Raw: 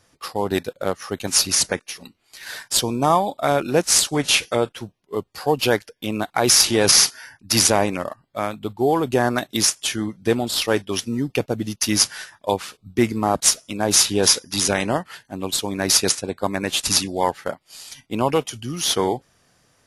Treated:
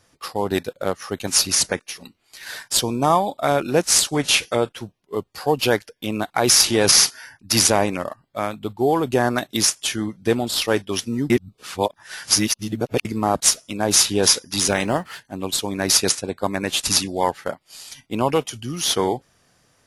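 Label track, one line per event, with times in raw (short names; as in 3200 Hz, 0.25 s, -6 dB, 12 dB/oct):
11.300000	13.050000	reverse
14.600000	15.200000	G.711 law mismatch coded by mu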